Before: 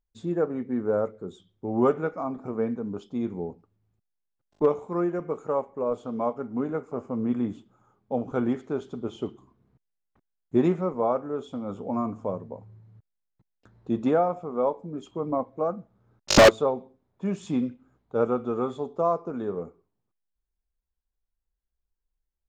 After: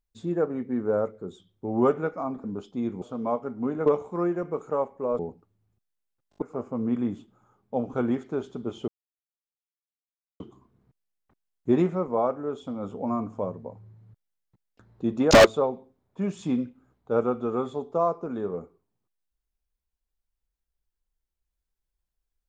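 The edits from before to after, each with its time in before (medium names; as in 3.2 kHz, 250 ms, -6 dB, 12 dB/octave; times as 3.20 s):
2.44–2.82 s: delete
3.40–4.63 s: swap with 5.96–6.80 s
9.26 s: insert silence 1.52 s
14.17–16.35 s: delete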